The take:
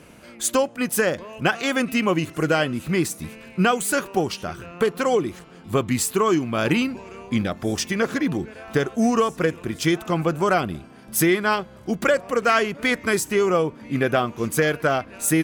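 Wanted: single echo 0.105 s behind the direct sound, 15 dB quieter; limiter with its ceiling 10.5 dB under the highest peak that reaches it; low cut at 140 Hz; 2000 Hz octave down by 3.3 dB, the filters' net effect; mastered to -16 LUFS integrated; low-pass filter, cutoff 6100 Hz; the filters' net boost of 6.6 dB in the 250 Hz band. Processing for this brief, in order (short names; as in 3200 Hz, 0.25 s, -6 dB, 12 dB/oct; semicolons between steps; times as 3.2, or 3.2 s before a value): HPF 140 Hz; LPF 6100 Hz; bell 250 Hz +9 dB; bell 2000 Hz -4.5 dB; limiter -14.5 dBFS; echo 0.105 s -15 dB; gain +8.5 dB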